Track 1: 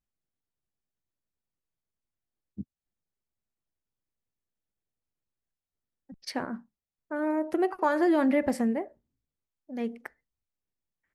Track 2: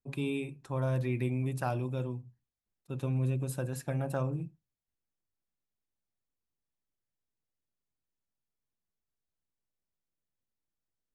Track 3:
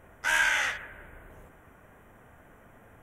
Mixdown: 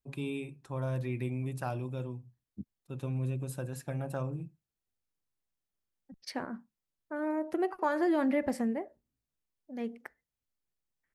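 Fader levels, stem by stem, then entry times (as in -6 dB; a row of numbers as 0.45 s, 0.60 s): -4.5 dB, -3.0 dB, mute; 0.00 s, 0.00 s, mute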